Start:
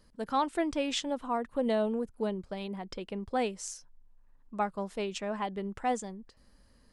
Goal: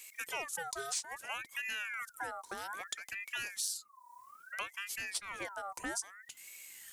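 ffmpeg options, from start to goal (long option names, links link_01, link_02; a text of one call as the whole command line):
ffmpeg -i in.wav -af "aexciter=amount=5.8:drive=9.7:freq=5000,acompressor=threshold=-43dB:ratio=3,aeval=exprs='val(0)*sin(2*PI*1600*n/s+1600*0.4/0.61*sin(2*PI*0.61*n/s))':channel_layout=same,volume=4.5dB" out.wav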